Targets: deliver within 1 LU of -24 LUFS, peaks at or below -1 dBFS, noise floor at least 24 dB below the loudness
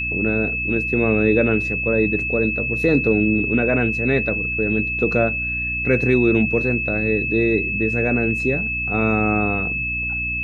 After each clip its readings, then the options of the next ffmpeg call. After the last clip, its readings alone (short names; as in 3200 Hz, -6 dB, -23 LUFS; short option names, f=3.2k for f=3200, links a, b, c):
hum 60 Hz; harmonics up to 300 Hz; hum level -29 dBFS; steady tone 2600 Hz; tone level -22 dBFS; loudness -19.0 LUFS; peak -4.0 dBFS; loudness target -24.0 LUFS
-> -af "bandreject=f=60:t=h:w=4,bandreject=f=120:t=h:w=4,bandreject=f=180:t=h:w=4,bandreject=f=240:t=h:w=4,bandreject=f=300:t=h:w=4"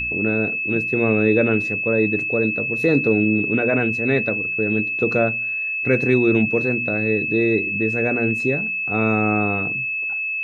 hum none; steady tone 2600 Hz; tone level -22 dBFS
-> -af "bandreject=f=2.6k:w=30"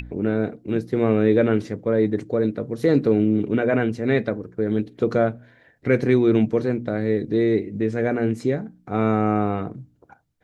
steady tone none; loudness -22.0 LUFS; peak -5.5 dBFS; loudness target -24.0 LUFS
-> -af "volume=-2dB"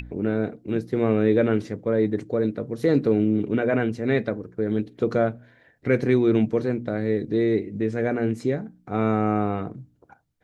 loudness -24.0 LUFS; peak -7.5 dBFS; noise floor -61 dBFS